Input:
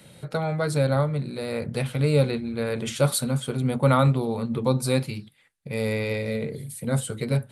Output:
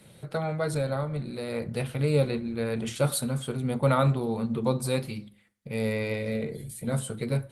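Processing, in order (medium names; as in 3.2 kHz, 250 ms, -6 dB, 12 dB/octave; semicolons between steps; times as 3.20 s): 0.73–1.47 s: compression 2:1, threshold -24 dBFS, peak gain reduction 4.5 dB; reverberation RT60 0.55 s, pre-delay 5 ms, DRR 12.5 dB; trim -3 dB; Opus 20 kbps 48 kHz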